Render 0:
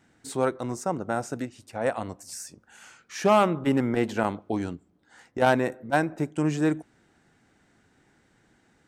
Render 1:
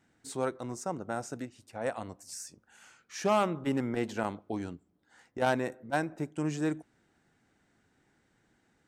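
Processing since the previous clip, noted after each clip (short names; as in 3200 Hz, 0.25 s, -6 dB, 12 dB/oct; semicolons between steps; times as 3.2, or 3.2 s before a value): dynamic EQ 6200 Hz, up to +4 dB, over -47 dBFS, Q 0.92; gain -7 dB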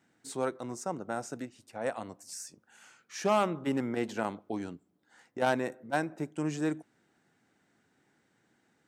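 HPF 130 Hz 12 dB/oct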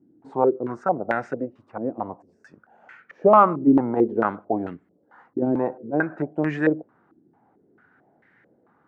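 stepped low-pass 4.5 Hz 320–1900 Hz; gain +7 dB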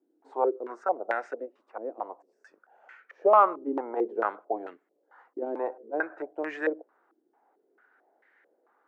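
HPF 390 Hz 24 dB/oct; gain -4.5 dB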